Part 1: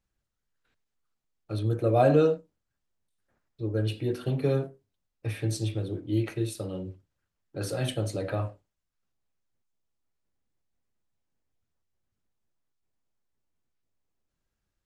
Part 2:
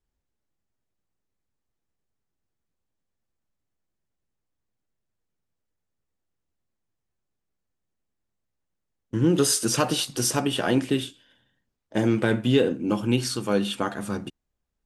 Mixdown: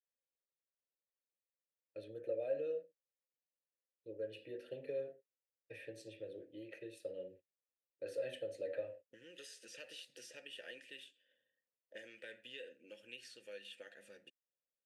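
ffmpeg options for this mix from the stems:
-filter_complex "[0:a]agate=range=0.0708:threshold=0.00891:ratio=16:detection=peak,acompressor=threshold=0.0562:ratio=12,adelay=450,volume=0.794[s0];[1:a]acrossover=split=1500|6700[s1][s2][s3];[s1]acompressor=threshold=0.01:ratio=4[s4];[s2]acompressor=threshold=0.0282:ratio=4[s5];[s3]acompressor=threshold=0.01:ratio=4[s6];[s4][s5][s6]amix=inputs=3:normalize=0,volume=0.531[s7];[s0][s7]amix=inputs=2:normalize=0,asplit=3[s8][s9][s10];[s8]bandpass=f=530:t=q:w=8,volume=1[s11];[s9]bandpass=f=1840:t=q:w=8,volume=0.501[s12];[s10]bandpass=f=2480:t=q:w=8,volume=0.355[s13];[s11][s12][s13]amix=inputs=3:normalize=0,aemphasis=mode=production:type=50fm,bandreject=f=740:w=13"

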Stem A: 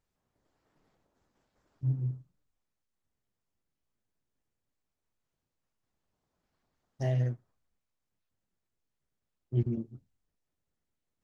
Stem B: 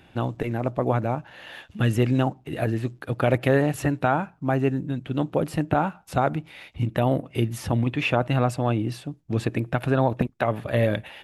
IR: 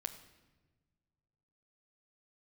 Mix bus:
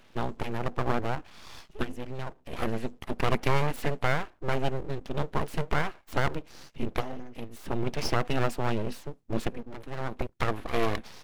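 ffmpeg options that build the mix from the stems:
-filter_complex "[0:a]lowshelf=f=83:g=-9,bandreject=f=480:w=12,volume=0.501,asplit=2[s0][s1];[1:a]volume=0.75[s2];[s1]apad=whole_len=495281[s3];[s2][s3]sidechaincompress=threshold=0.00282:ratio=4:attack=5.2:release=487[s4];[s0][s4]amix=inputs=2:normalize=0,aeval=exprs='abs(val(0))':c=same"

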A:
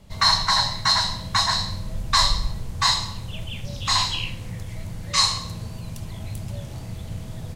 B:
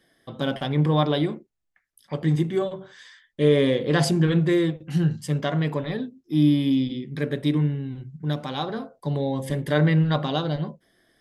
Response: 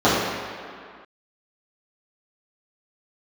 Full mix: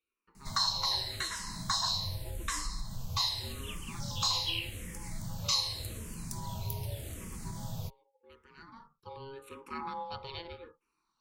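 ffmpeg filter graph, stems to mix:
-filter_complex "[0:a]acompressor=threshold=0.0447:ratio=5,aemphasis=mode=production:type=50kf,adelay=350,volume=0.668[s0];[1:a]highpass=f=160:w=0.5412,highpass=f=160:w=1.3066,equalizer=f=2900:t=o:w=0.75:g=7.5,aeval=exprs='val(0)*sin(2*PI*680*n/s)':c=same,volume=0.251,afade=t=in:st=8.49:d=0.67:silence=0.281838[s1];[s0][s1]amix=inputs=2:normalize=0,asplit=2[s2][s3];[s3]afreqshift=-0.85[s4];[s2][s4]amix=inputs=2:normalize=1"

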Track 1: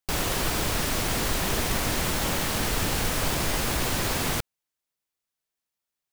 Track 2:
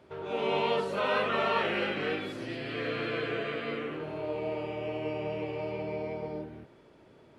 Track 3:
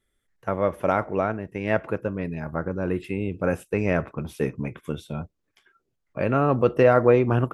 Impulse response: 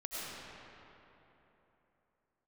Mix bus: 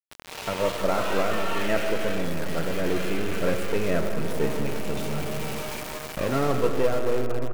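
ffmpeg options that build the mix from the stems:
-filter_complex "[0:a]asoftclip=type=tanh:threshold=0.0447,adelay=2150,volume=0.112[s0];[1:a]highpass=890,flanger=delay=17:depth=4.2:speed=0.91,volume=1.06[s1];[2:a]aeval=exprs='if(lt(val(0),0),0.447*val(0),val(0))':c=same,bandreject=f=77.77:t=h:w=4,bandreject=f=155.54:t=h:w=4,bandreject=f=233.31:t=h:w=4,bandreject=f=311.08:t=h:w=4,bandreject=f=388.85:t=h:w=4,bandreject=f=466.62:t=h:w=4,bandreject=f=544.39:t=h:w=4,bandreject=f=622.16:t=h:w=4,bandreject=f=699.93:t=h:w=4,bandreject=f=777.7:t=h:w=4,bandreject=f=855.47:t=h:w=4,bandreject=f=933.24:t=h:w=4,bandreject=f=1011.01:t=h:w=4,bandreject=f=1088.78:t=h:w=4,bandreject=f=1166.55:t=h:w=4,bandreject=f=1244.32:t=h:w=4,bandreject=f=1322.09:t=h:w=4,bandreject=f=1399.86:t=h:w=4,bandreject=f=1477.63:t=h:w=4,bandreject=f=1555.4:t=h:w=4,bandreject=f=1633.17:t=h:w=4,bandreject=f=1710.94:t=h:w=4,bandreject=f=1788.71:t=h:w=4,bandreject=f=1866.48:t=h:w=4,bandreject=f=1944.25:t=h:w=4,bandreject=f=2022.02:t=h:w=4,bandreject=f=2099.79:t=h:w=4,bandreject=f=2177.56:t=h:w=4,bandreject=f=2255.33:t=h:w=4,bandreject=f=2333.1:t=h:w=4,bandreject=f=2410.87:t=h:w=4,volume=0.708,afade=t=out:st=6.3:d=0.67:silence=0.334965,asplit=2[s2][s3];[s3]volume=0.501[s4];[3:a]atrim=start_sample=2205[s5];[s4][s5]afir=irnorm=-1:irlink=0[s6];[s0][s1][s2][s6]amix=inputs=4:normalize=0,adynamicequalizer=threshold=0.01:dfrequency=380:dqfactor=0.86:tfrequency=380:tqfactor=0.86:attack=5:release=100:ratio=0.375:range=2:mode=boostabove:tftype=bell,acompressor=mode=upward:threshold=0.0631:ratio=2.5,aeval=exprs='val(0)*gte(abs(val(0)),0.0398)':c=same"

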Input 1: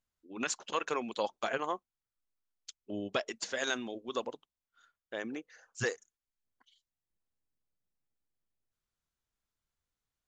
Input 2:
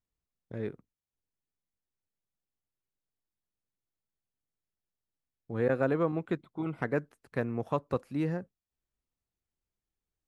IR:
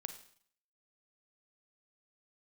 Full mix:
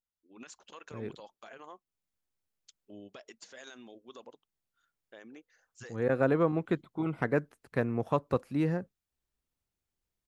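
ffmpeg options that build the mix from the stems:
-filter_complex "[0:a]alimiter=level_in=1.41:limit=0.0631:level=0:latency=1:release=68,volume=0.708,volume=0.299,asplit=2[s0][s1];[1:a]adelay=400,volume=1.26[s2];[s1]apad=whole_len=470953[s3];[s2][s3]sidechaincompress=threshold=0.00282:ratio=8:attack=30:release=527[s4];[s0][s4]amix=inputs=2:normalize=0"

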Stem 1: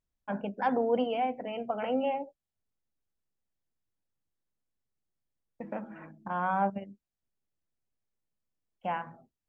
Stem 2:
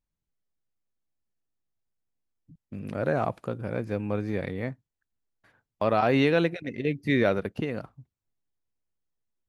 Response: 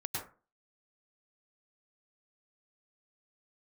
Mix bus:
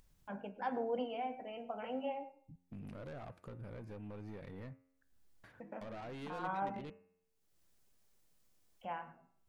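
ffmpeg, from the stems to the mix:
-filter_complex "[0:a]bass=f=250:g=-5,treble=f=4000:g=4,flanger=delay=4.7:depth=7.9:regen=-71:speed=0.38:shape=sinusoidal,volume=0.501,asplit=2[s0][s1];[s1]volume=0.119[s2];[1:a]acompressor=threshold=0.0126:ratio=2.5,asoftclip=type=tanh:threshold=0.0133,volume=0.473,asplit=3[s3][s4][s5];[s3]atrim=end=6.9,asetpts=PTS-STARTPTS,afade=t=out:st=6.896:d=0.004:c=hsin[s6];[s4]atrim=start=6.9:end=8.97,asetpts=PTS-STARTPTS,volume=0[s7];[s5]atrim=start=8.97,asetpts=PTS-STARTPTS,afade=t=in:d=0.004:c=hsin[s8];[s6][s7][s8]concat=n=3:v=0:a=1[s9];[2:a]atrim=start_sample=2205[s10];[s2][s10]afir=irnorm=-1:irlink=0[s11];[s0][s9][s11]amix=inputs=3:normalize=0,lowshelf=f=160:g=5.5,bandreject=f=89.28:t=h:w=4,bandreject=f=178.56:t=h:w=4,bandreject=f=267.84:t=h:w=4,bandreject=f=357.12:t=h:w=4,bandreject=f=446.4:t=h:w=4,bandreject=f=535.68:t=h:w=4,bandreject=f=624.96:t=h:w=4,bandreject=f=714.24:t=h:w=4,bandreject=f=803.52:t=h:w=4,bandreject=f=892.8:t=h:w=4,bandreject=f=982.08:t=h:w=4,bandreject=f=1071.36:t=h:w=4,bandreject=f=1160.64:t=h:w=4,bandreject=f=1249.92:t=h:w=4,bandreject=f=1339.2:t=h:w=4,bandreject=f=1428.48:t=h:w=4,bandreject=f=1517.76:t=h:w=4,bandreject=f=1607.04:t=h:w=4,bandreject=f=1696.32:t=h:w=4,bandreject=f=1785.6:t=h:w=4,bandreject=f=1874.88:t=h:w=4,bandreject=f=1964.16:t=h:w=4,bandreject=f=2053.44:t=h:w=4,bandreject=f=2142.72:t=h:w=4,bandreject=f=2232:t=h:w=4,bandreject=f=2321.28:t=h:w=4,bandreject=f=2410.56:t=h:w=4,bandreject=f=2499.84:t=h:w=4,bandreject=f=2589.12:t=h:w=4,bandreject=f=2678.4:t=h:w=4,bandreject=f=2767.68:t=h:w=4,bandreject=f=2856.96:t=h:w=4,acompressor=mode=upward:threshold=0.00251:ratio=2.5"

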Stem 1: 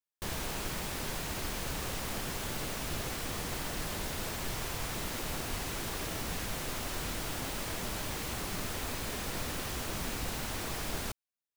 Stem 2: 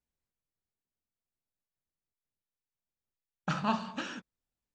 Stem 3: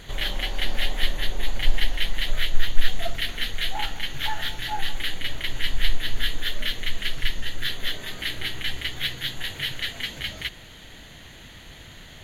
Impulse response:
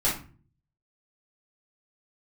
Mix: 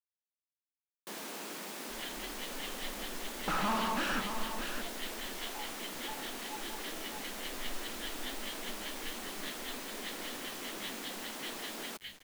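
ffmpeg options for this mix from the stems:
-filter_complex "[0:a]highpass=f=200:w=0.5412,highpass=f=200:w=1.3066,adelay=850,volume=0.562[s0];[1:a]asplit=2[s1][s2];[s2]highpass=f=720:p=1,volume=89.1,asoftclip=type=tanh:threshold=0.178[s3];[s1][s3]amix=inputs=2:normalize=0,lowpass=f=1700:p=1,volume=0.501,volume=0.335,asplit=2[s4][s5];[s5]volume=0.398[s6];[2:a]agate=range=0.398:threshold=0.0251:ratio=16:detection=peak,asplit=2[s7][s8];[s8]adelay=11.5,afreqshift=2.4[s9];[s7][s9]amix=inputs=2:normalize=1,adelay=1800,volume=0.211,asplit=2[s10][s11];[s11]volume=0.473[s12];[s6][s12]amix=inputs=2:normalize=0,aecho=0:1:619:1[s13];[s0][s4][s10][s13]amix=inputs=4:normalize=0,lowshelf=f=160:t=q:w=1.5:g=-9.5,acrusher=bits=8:mix=0:aa=0.000001"

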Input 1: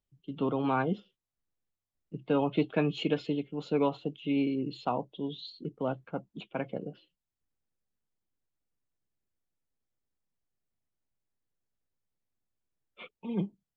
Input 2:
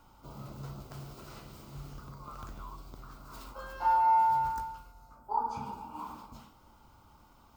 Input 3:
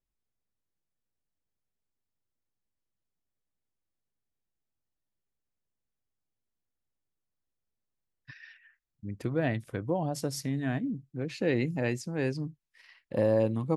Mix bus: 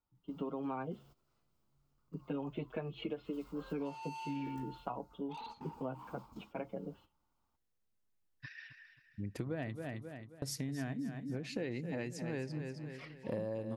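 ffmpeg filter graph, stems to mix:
-filter_complex "[0:a]lowpass=2400,asplit=2[s0][s1];[s1]adelay=6.6,afreqshift=-0.62[s2];[s0][s2]amix=inputs=2:normalize=1,volume=0.841,asplit=2[s3][s4];[1:a]asoftclip=type=tanh:threshold=0.0188,volume=0.376,afade=t=in:st=2.99:d=0.62:silence=0.375837[s5];[2:a]adelay=150,volume=0.944,asplit=3[s6][s7][s8];[s6]atrim=end=9.88,asetpts=PTS-STARTPTS,afade=t=out:st=9.876:d=0.004:c=hsin[s9];[s7]atrim=start=9.88:end=10.42,asetpts=PTS-STARTPTS,volume=0[s10];[s8]atrim=start=10.42,asetpts=PTS-STARTPTS,afade=t=in:d=0.004:c=hsin[s11];[s9][s10][s11]concat=n=3:v=0:a=1,asplit=2[s12][s13];[s13]volume=0.299[s14];[s4]apad=whole_len=337961[s15];[s5][s15]sidechaingate=range=0.178:threshold=0.00112:ratio=16:detection=peak[s16];[s14]aecho=0:1:267|534|801|1068|1335:1|0.36|0.13|0.0467|0.0168[s17];[s3][s16][s12][s17]amix=inputs=4:normalize=0,acompressor=threshold=0.0158:ratio=6"

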